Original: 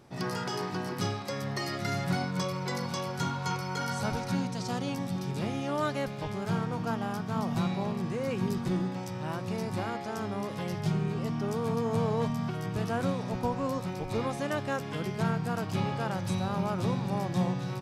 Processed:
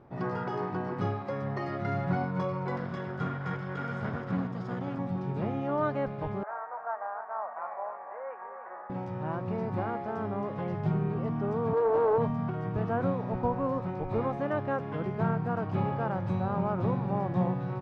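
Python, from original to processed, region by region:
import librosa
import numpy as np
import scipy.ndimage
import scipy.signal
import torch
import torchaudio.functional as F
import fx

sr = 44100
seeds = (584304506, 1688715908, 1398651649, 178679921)

y = fx.chain(x, sr, fx.lower_of_two(delay_ms=0.6),
    fx.highpass(hz=96.0, slope=12), at=(2.76, 4.99))
y = fx.chain(y, sr, fx.cheby1_bandpass(low_hz=610.0, high_hz=1900.0, order=3),
    fx.echo_single(ms=296, db=-9.0), at=(6.43, 8.9))
y = fx.chain(y, sr, fx.low_shelf_res(hz=270.0, db=-12.0, q=3.0),
    fx.doppler_dist(depth_ms=0.27), at=(11.73, 12.18))
y = scipy.signal.sosfilt(scipy.signal.butter(2, 1300.0, 'lowpass', fs=sr, output='sos'), y)
y = fx.peak_eq(y, sr, hz=200.0, db=-3.0, octaves=1.7)
y = F.gain(torch.from_numpy(y), 3.0).numpy()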